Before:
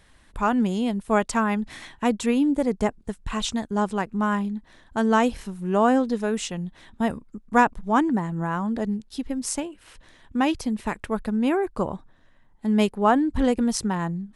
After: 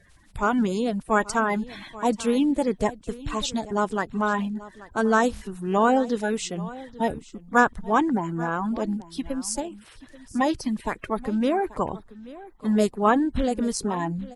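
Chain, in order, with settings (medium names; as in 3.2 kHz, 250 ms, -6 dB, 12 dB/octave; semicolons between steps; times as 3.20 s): coarse spectral quantiser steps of 30 dB; 13.40–13.97 s: compression 1.5:1, threshold -25 dBFS, peak gain reduction 3.5 dB; delay 834 ms -18.5 dB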